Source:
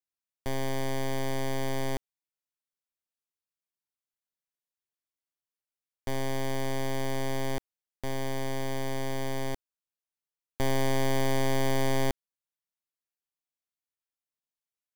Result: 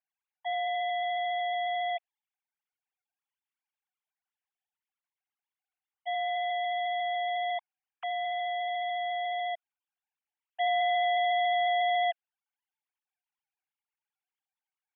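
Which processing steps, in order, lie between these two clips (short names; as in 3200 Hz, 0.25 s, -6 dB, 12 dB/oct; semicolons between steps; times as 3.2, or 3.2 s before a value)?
sine-wave speech; gain -2.5 dB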